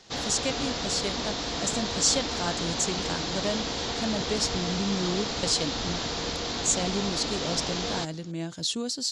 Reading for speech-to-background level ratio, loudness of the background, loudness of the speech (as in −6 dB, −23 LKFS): 0.0 dB, −30.0 LKFS, −30.0 LKFS